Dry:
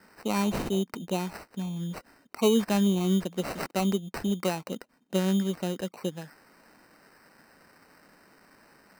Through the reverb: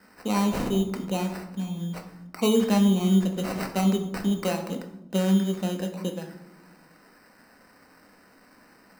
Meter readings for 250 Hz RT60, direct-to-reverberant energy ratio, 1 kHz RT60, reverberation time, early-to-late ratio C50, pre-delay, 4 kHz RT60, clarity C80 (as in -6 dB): 1.6 s, 3.0 dB, 0.75 s, 0.90 s, 9.0 dB, 4 ms, 0.55 s, 12.0 dB